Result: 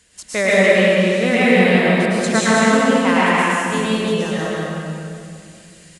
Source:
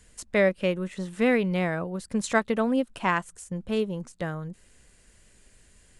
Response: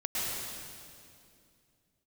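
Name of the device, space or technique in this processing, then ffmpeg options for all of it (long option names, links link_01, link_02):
PA in a hall: -filter_complex "[0:a]highpass=frequency=150:poles=1,equalizer=frequency=4000:width_type=o:width=2:gain=6,aecho=1:1:190:0.596[link_01];[1:a]atrim=start_sample=2205[link_02];[link_01][link_02]afir=irnorm=-1:irlink=0,volume=2.5dB"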